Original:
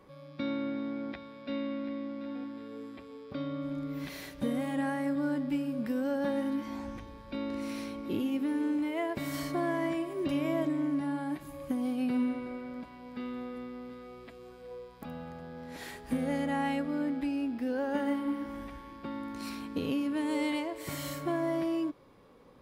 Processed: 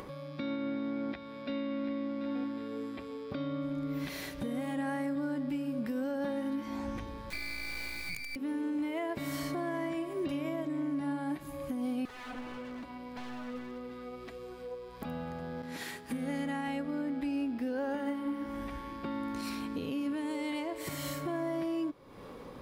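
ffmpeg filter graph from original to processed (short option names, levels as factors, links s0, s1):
-filter_complex "[0:a]asettb=1/sr,asplit=3[s0][s1][s2];[s0]atrim=end=7.304[s3];[s1]atrim=start=7.3:end=8.36,asetpts=PTS-STARTPTS,afade=t=in:d=0.004:c=qsin,afade=t=out:st=1.056:d=0.004:c=qsin,lowpass=f=2200:t=q:w=0.5098,lowpass=f=2200:t=q:w=0.6013,lowpass=f=2200:t=q:w=0.9,lowpass=f=2200:t=q:w=2.563,afreqshift=-2600,acrusher=bits=5:dc=4:mix=0:aa=0.000001[s4];[s2]atrim=start=8.356[s5];[s3][s4]acrossfade=d=0.004:c1=hsin:c2=qsin[s6];[s6][s5]acrossfade=d=0.004:c1=qsin:c2=hsin,asettb=1/sr,asplit=3[s7][s8][s9];[s7]atrim=end=12.054[s10];[s8]atrim=start=12.05:end=15.02,asetpts=PTS-STARTPTS,afade=t=in:d=0.004:c=qsin,afade=t=out:st=2.966:d=0.004:c=qsin,aeval=exprs='0.0126*(abs(mod(val(0)/0.0126+3,4)-2)-1)':c=same,flanger=delay=1.6:depth=2.7:regen=61:speed=1.7:shape=triangular[s11];[s9]atrim=start=15.016[s12];[s10][s11]acrossfade=d=0.004:c1=hsin:c2=qsin[s13];[s13][s12]acrossfade=d=0.004:c1=qsin:c2=hsin,asettb=1/sr,asplit=3[s14][s15][s16];[s14]atrim=end=15.624[s17];[s15]atrim=start=15.62:end=16.68,asetpts=PTS-STARTPTS,afade=t=in:d=0.004:c=qsin,afade=t=out:st=1.056:d=0.004:c=qsin,highpass=120,agate=range=0.0224:threshold=0.00562:ratio=3:release=100:detection=peak,equalizer=f=600:t=o:w=1.2:g=-5.5[s18];[s16]atrim=start=16.676[s19];[s17][s18]acrossfade=d=0.004:c1=hsin:c2=qsin[s20];[s20][s19]acrossfade=d=0.004:c1=qsin:c2=hsin,alimiter=level_in=2.37:limit=0.0631:level=0:latency=1:release=469,volume=0.422,acompressor=mode=upward:threshold=0.00708:ratio=2.5,volume=1.68"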